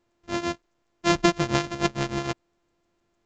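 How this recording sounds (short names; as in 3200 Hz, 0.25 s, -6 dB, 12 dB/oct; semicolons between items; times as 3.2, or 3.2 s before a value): a buzz of ramps at a fixed pitch in blocks of 128 samples; tremolo triangle 6.6 Hz, depth 80%; A-law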